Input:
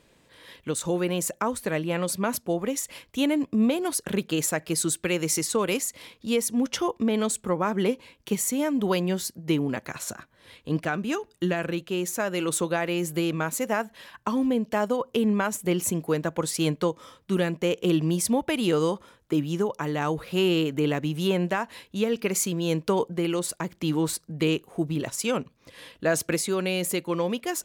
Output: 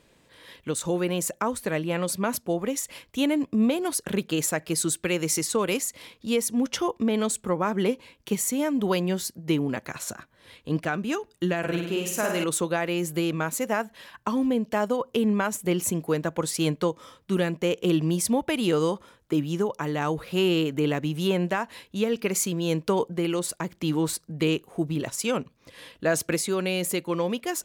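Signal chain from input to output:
0:11.58–0:12.44: flutter between parallel walls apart 8.9 metres, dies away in 0.78 s

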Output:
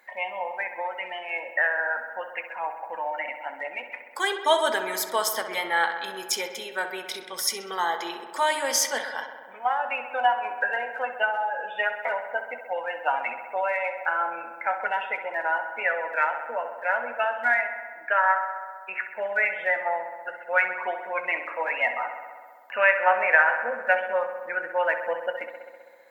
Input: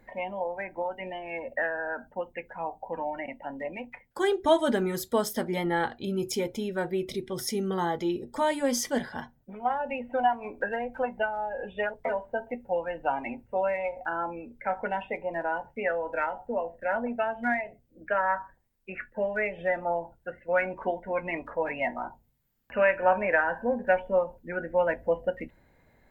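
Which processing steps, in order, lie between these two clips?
high-pass filter 1,000 Hz 12 dB per octave
on a send: feedback echo with a low-pass in the loop 65 ms, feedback 80%, low-pass 3,700 Hz, level −10 dB
on the sum: level +8 dB

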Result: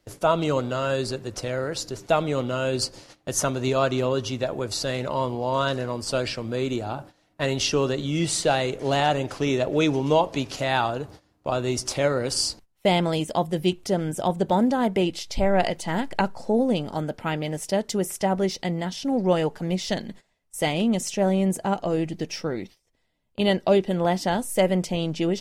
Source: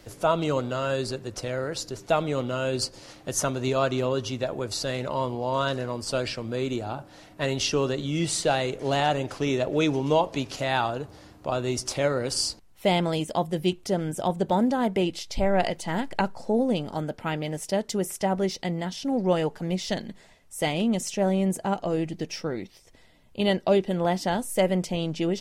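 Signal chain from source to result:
noise gate −44 dBFS, range −18 dB
level +2 dB

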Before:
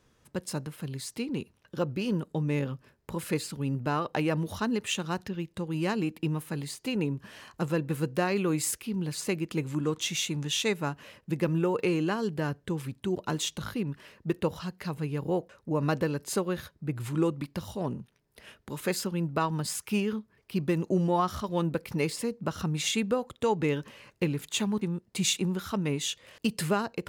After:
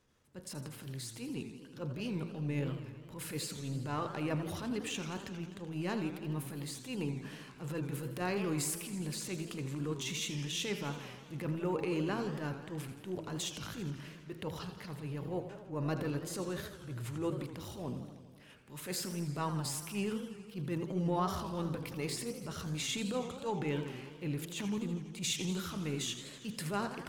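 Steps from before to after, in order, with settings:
transient designer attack −11 dB, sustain +4 dB
hum removal 54.89 Hz, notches 30
feedback echo with a swinging delay time 82 ms, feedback 73%, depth 200 cents, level −11 dB
level −6 dB

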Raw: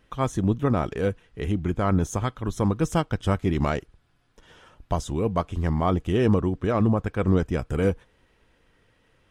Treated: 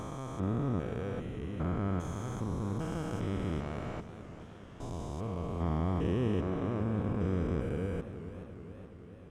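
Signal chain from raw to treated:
spectrum averaged block by block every 400 ms
feedback echo with a swinging delay time 428 ms, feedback 65%, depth 117 cents, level −12 dB
level −6.5 dB

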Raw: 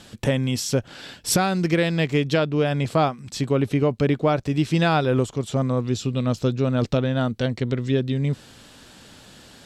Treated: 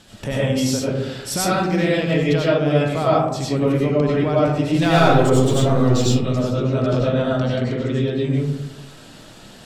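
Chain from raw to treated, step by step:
0:04.82–0:06.07: leveller curve on the samples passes 2
in parallel at −3 dB: brickwall limiter −17.5 dBFS, peak gain reduction 8.5 dB
on the sum: comb and all-pass reverb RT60 1 s, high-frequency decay 0.3×, pre-delay 55 ms, DRR −7 dB
level −8 dB

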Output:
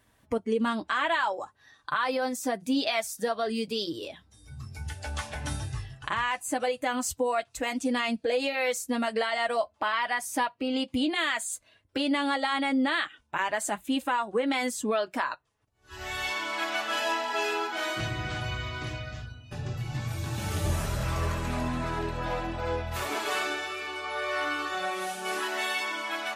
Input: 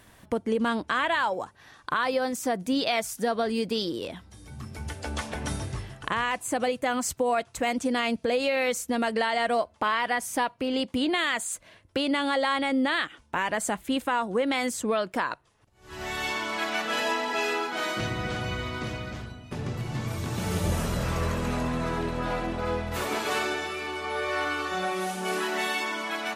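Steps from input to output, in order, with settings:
noise reduction from a noise print of the clip's start 10 dB
notch comb filter 180 Hz

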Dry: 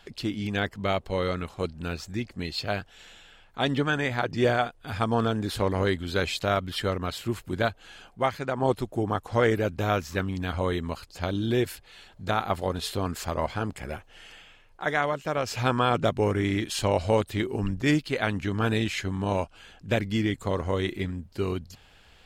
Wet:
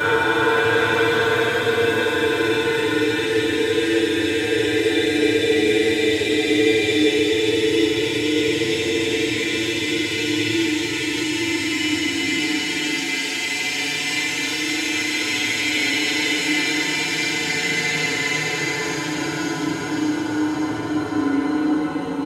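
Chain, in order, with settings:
peak hold with a rise ahead of every peak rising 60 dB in 1.33 s
high-pass filter 280 Hz 12 dB per octave
parametric band 600 Hz −3.5 dB 0.34 octaves
comb filter 6.8 ms, depth 81%
transient designer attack +8 dB, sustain +4 dB
extreme stretch with random phases 50×, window 0.05 s, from 0:18.63
delay with a high-pass on its return 571 ms, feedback 58%, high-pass 3,200 Hz, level −4 dB
feedback delay network reverb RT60 0.61 s, low-frequency decay 1.5×, high-frequency decay 0.8×, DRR −8 dB
level −7.5 dB

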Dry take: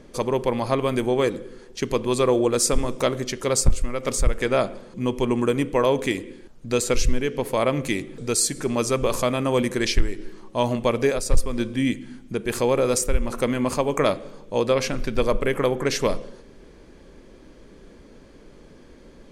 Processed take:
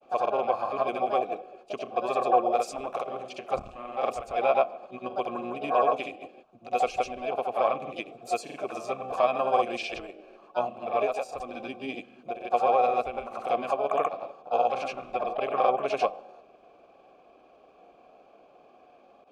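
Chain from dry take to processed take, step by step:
granular cloud, pitch spread up and down by 0 semitones
pitch-shifted copies added +7 semitones −8 dB
formant filter a
level +8 dB

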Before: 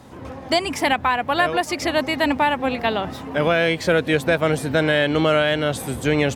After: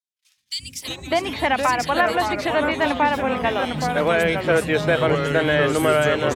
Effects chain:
noise gate −33 dBFS, range −38 dB
three-band delay without the direct sound highs, lows, mids 370/600 ms, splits 240/3,300 Hz
delay with pitch and tempo change per echo 254 ms, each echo −3 semitones, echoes 2, each echo −6 dB

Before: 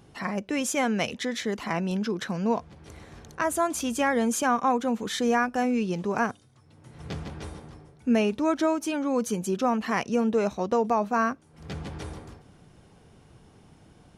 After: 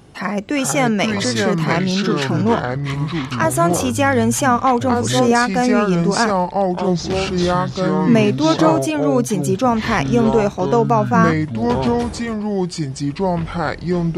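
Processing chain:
delay with pitch and tempo change per echo 359 ms, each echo −5 semitones, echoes 2
level +8.5 dB

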